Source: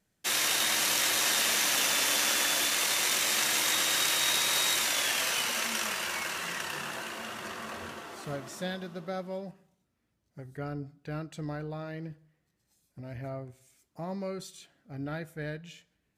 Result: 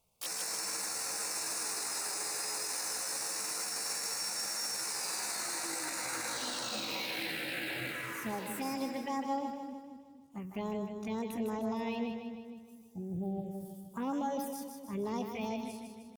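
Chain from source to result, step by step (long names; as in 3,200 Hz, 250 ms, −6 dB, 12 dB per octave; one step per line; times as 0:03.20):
healed spectral selection 0:12.89–0:13.66, 600–5,400 Hz both
phaser swept by the level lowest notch 200 Hz, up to 2,200 Hz, full sweep at −30.5 dBFS
downward compressor 10 to 1, threshold −34 dBFS, peak gain reduction 7.5 dB
brickwall limiter −32.5 dBFS, peak gain reduction 7.5 dB
pitch shifter +6.5 semitones
echo with a time of its own for lows and highs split 390 Hz, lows 233 ms, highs 154 ms, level −6 dB
level +4.5 dB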